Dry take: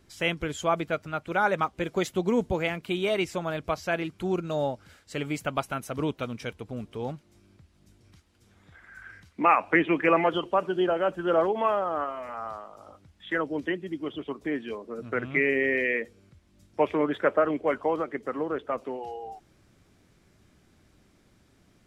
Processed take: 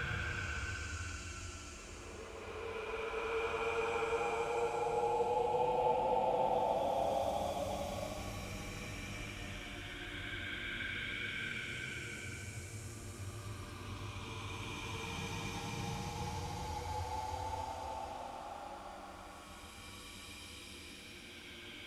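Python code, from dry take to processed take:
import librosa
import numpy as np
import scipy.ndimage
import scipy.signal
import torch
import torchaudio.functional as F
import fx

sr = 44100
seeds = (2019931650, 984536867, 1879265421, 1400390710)

y = fx.echo_stepped(x, sr, ms=379, hz=470.0, octaves=0.7, feedback_pct=70, wet_db=-5)
y = fx.paulstretch(y, sr, seeds[0], factor=30.0, window_s=0.1, from_s=7.62)
y = y * 10.0 ** (11.0 / 20.0)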